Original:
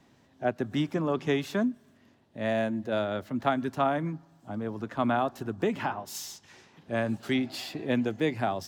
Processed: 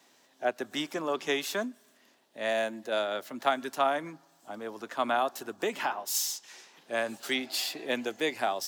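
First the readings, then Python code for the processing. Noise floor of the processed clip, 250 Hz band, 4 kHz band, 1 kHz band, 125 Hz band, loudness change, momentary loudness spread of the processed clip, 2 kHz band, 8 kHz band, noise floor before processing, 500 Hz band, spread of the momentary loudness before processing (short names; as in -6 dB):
-65 dBFS, -8.5 dB, +5.5 dB, +0.5 dB, -18.0 dB, -1.5 dB, 11 LU, +2.0 dB, +9.5 dB, -62 dBFS, -1.5 dB, 9 LU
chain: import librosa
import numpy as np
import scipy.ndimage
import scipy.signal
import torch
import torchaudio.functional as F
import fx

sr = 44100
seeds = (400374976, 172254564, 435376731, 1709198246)

y = scipy.signal.sosfilt(scipy.signal.butter(2, 420.0, 'highpass', fs=sr, output='sos'), x)
y = fx.high_shelf(y, sr, hz=3900.0, db=12.0)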